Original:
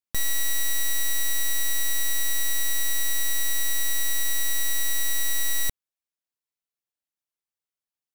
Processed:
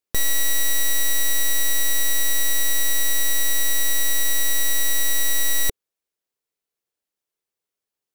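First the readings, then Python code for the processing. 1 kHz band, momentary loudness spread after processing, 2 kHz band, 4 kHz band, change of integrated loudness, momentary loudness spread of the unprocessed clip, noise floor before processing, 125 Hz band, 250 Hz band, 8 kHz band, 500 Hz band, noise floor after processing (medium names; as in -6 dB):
+5.5 dB, 0 LU, +4.5 dB, +4.5 dB, +4.5 dB, 0 LU, under -85 dBFS, no reading, +7.0 dB, +4.5 dB, +9.0 dB, under -85 dBFS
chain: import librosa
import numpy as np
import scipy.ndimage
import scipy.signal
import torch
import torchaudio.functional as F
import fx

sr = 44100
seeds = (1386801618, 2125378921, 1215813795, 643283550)

y = fx.peak_eq(x, sr, hz=430.0, db=9.0, octaves=0.72)
y = y * librosa.db_to_amplitude(4.5)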